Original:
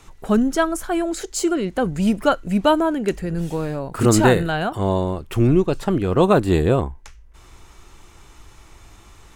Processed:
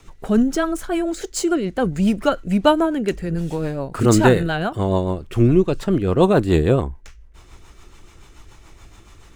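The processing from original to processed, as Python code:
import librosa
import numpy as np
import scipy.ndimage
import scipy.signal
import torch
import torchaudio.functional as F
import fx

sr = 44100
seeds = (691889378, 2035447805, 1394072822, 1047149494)

y = scipy.signal.medfilt(x, 3)
y = fx.rotary(y, sr, hz=7.0)
y = y * librosa.db_to_amplitude(2.5)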